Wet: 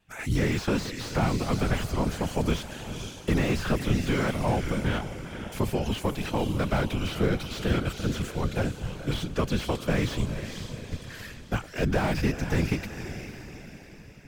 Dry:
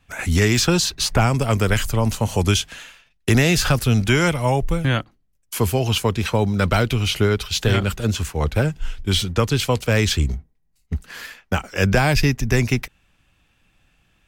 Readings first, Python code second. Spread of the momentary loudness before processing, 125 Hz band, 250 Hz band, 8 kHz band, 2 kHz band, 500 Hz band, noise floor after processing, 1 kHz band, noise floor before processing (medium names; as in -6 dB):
11 LU, -9.0 dB, -5.5 dB, -14.0 dB, -10.0 dB, -7.5 dB, -46 dBFS, -7.5 dB, -64 dBFS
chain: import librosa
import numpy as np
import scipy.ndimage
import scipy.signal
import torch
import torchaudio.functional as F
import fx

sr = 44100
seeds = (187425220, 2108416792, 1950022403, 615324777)

y = fx.echo_diffused(x, sr, ms=482, feedback_pct=49, wet_db=-11.0)
y = fx.whisperise(y, sr, seeds[0])
y = fx.slew_limit(y, sr, full_power_hz=140.0)
y = F.gain(torch.from_numpy(y), -7.5).numpy()